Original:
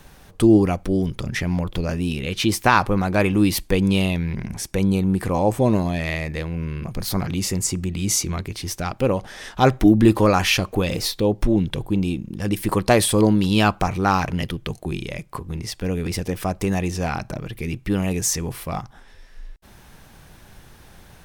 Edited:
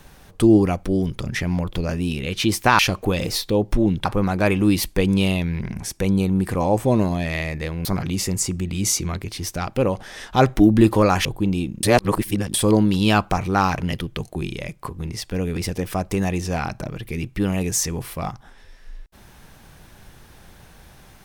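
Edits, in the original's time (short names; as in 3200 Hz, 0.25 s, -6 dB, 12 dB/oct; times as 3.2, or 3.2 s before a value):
6.59–7.09 cut
10.49–11.75 move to 2.79
12.33–13.04 reverse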